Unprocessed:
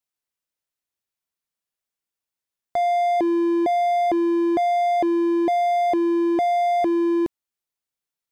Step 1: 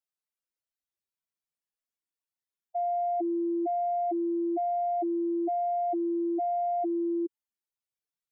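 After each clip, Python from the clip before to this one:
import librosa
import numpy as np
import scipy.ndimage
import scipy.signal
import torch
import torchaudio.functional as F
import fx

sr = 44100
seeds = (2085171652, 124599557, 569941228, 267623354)

y = fx.spec_expand(x, sr, power=2.4)
y = y * librosa.db_to_amplitude(-8.5)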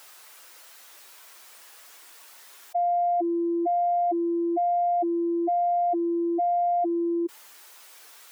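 y = scipy.signal.sosfilt(scipy.signal.bessel(4, 460.0, 'highpass', norm='mag', fs=sr, output='sos'), x)
y = fx.peak_eq(y, sr, hz=1200.0, db=4.5, octaves=1.8)
y = fx.env_flatten(y, sr, amount_pct=70)
y = y * librosa.db_to_amplitude(3.5)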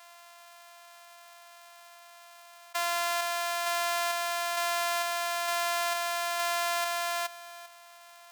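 y = np.r_[np.sort(x[:len(x) // 128 * 128].reshape(-1, 128), axis=1).ravel(), x[len(x) // 128 * 128:]]
y = scipy.signal.sosfilt(scipy.signal.butter(6, 670.0, 'highpass', fs=sr, output='sos'), y)
y = y + 10.0 ** (-15.5 / 20.0) * np.pad(y, (int(396 * sr / 1000.0), 0))[:len(y)]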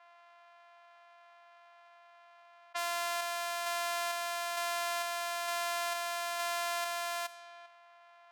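y = fx.env_lowpass(x, sr, base_hz=1900.0, full_db=-29.0)
y = y * librosa.db_to_amplitude(-5.0)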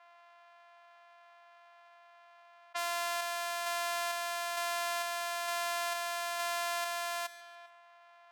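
y = fx.echo_feedback(x, sr, ms=144, feedback_pct=40, wet_db=-20.5)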